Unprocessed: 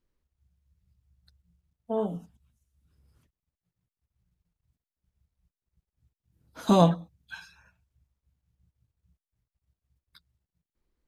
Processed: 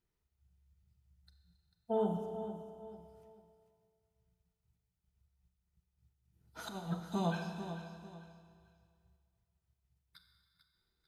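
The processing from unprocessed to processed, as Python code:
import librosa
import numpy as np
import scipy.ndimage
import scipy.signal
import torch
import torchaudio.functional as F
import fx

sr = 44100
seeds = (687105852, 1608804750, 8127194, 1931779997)

y = fx.notch_comb(x, sr, f0_hz=550.0)
y = fx.echo_feedback(y, sr, ms=444, feedback_pct=30, wet_db=-11.5)
y = fx.over_compress(y, sr, threshold_db=-27.0, ratio=-0.5)
y = fx.peak_eq(y, sr, hz=270.0, db=-11.0, octaves=0.3)
y = fx.rev_schroeder(y, sr, rt60_s=2.1, comb_ms=30, drr_db=5.5)
y = y * librosa.db_to_amplitude(-6.0)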